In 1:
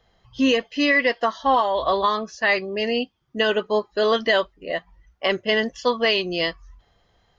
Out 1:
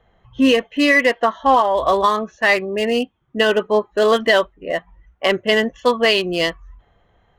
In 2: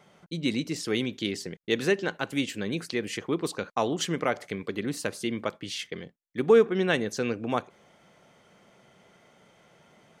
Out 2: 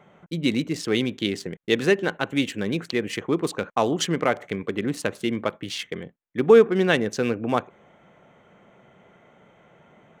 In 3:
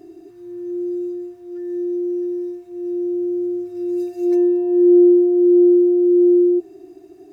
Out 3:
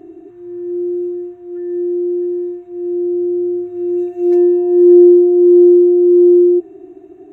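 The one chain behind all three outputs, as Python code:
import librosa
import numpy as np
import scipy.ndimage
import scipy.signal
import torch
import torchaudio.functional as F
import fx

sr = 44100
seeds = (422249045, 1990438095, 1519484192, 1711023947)

y = fx.wiener(x, sr, points=9)
y = y * librosa.db_to_amplitude(5.0)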